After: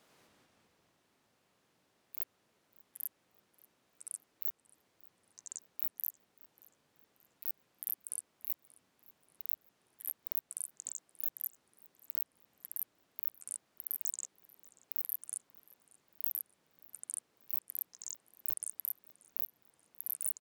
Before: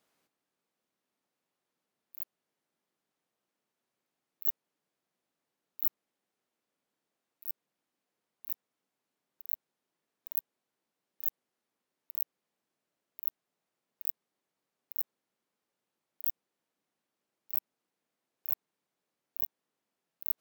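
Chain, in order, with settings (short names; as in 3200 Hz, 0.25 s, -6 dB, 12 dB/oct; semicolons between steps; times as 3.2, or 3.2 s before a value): compressor 6:1, threshold -35 dBFS, peak gain reduction 14 dB; high shelf 11000 Hz -7 dB; echoes that change speed 93 ms, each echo -5 st, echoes 3; feedback echo 0.583 s, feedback 41%, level -23.5 dB; gain +10 dB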